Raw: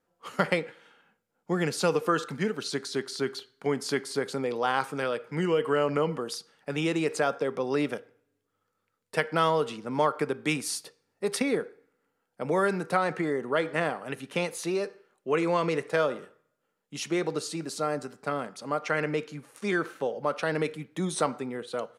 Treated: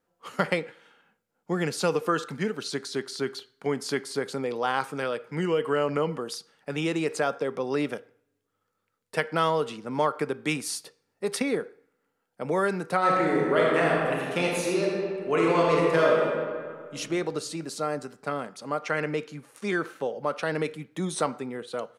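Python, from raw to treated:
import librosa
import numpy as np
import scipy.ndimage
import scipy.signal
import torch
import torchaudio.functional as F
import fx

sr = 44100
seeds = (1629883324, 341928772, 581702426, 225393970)

y = fx.reverb_throw(x, sr, start_s=12.97, length_s=3.98, rt60_s=2.0, drr_db=-3.5)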